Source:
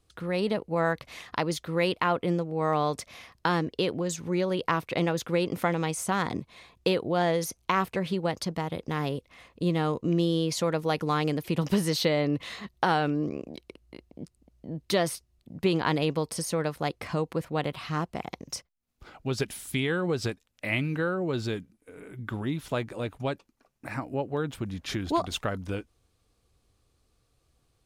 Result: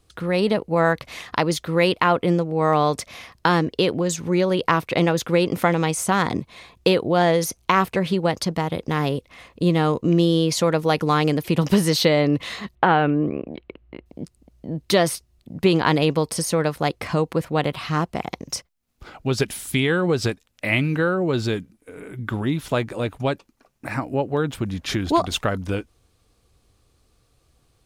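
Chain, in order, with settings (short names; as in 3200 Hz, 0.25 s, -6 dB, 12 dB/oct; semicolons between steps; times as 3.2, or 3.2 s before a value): 12.75–14.06 inverse Chebyshev low-pass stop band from 8800 Hz, stop band 60 dB; gain +7.5 dB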